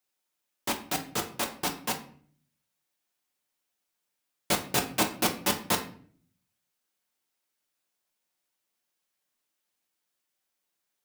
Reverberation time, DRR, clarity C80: 0.50 s, 2.5 dB, 15.5 dB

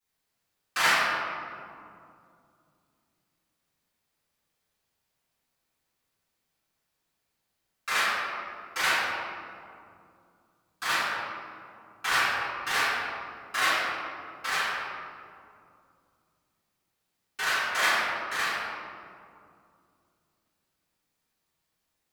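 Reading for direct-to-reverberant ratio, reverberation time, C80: −17.5 dB, 2.4 s, −1.5 dB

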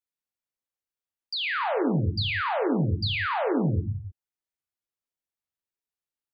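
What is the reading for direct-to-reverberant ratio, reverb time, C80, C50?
2.0 dB, non-exponential decay, 6.5 dB, 4.5 dB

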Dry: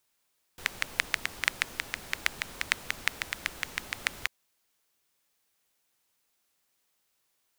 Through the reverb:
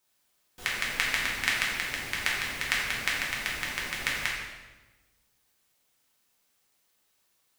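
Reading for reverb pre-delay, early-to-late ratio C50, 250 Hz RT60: 3 ms, 1.0 dB, 1.5 s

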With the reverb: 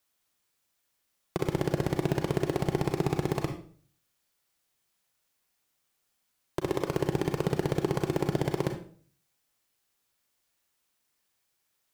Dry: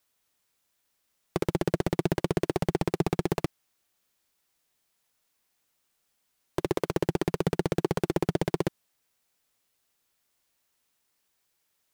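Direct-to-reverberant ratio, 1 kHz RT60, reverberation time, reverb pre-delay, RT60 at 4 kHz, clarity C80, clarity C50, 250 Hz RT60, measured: 4.5 dB, 0.45 s, 0.50 s, 32 ms, 0.40 s, 12.5 dB, 7.5 dB, 0.60 s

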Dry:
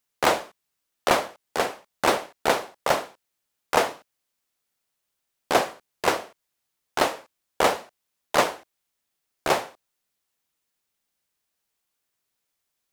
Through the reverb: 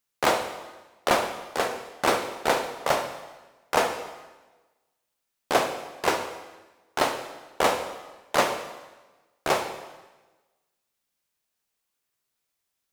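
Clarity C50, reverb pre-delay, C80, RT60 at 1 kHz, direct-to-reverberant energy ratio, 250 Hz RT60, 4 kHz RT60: 8.0 dB, 6 ms, 10.0 dB, 1.2 s, 5.5 dB, 1.3 s, 1.1 s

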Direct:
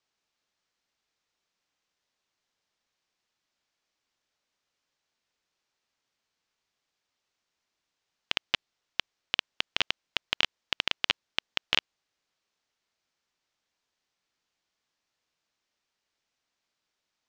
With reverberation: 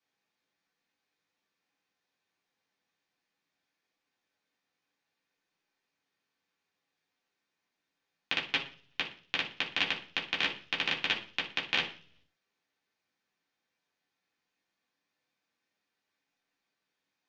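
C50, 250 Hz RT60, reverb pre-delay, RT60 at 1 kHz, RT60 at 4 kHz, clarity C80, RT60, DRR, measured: 10.0 dB, 0.70 s, 3 ms, 0.40 s, 0.55 s, 15.5 dB, 0.45 s, −5.0 dB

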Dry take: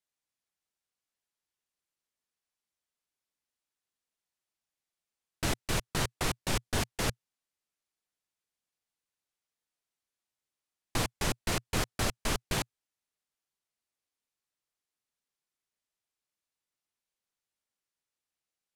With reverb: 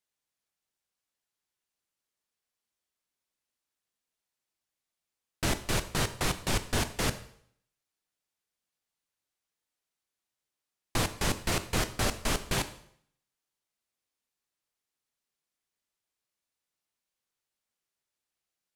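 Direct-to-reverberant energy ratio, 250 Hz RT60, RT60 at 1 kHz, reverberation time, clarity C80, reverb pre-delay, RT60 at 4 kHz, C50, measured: 10.0 dB, 0.65 s, 0.65 s, 0.65 s, 16.5 dB, 5 ms, 0.60 s, 14.0 dB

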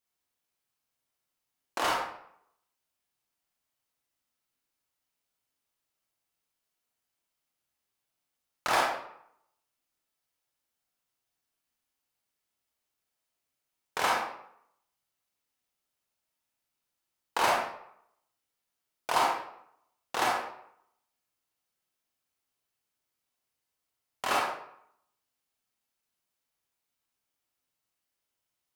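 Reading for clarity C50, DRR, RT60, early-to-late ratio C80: 1.0 dB, −3.5 dB, 0.70 s, 5.0 dB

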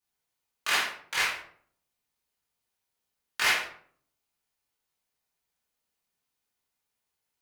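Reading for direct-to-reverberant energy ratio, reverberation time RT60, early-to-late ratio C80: −7.5 dB, 0.55 s, 8.5 dB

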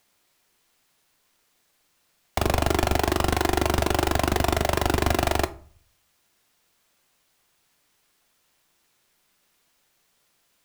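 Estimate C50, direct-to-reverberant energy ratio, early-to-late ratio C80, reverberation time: 18.5 dB, 11.0 dB, 23.0 dB, 0.50 s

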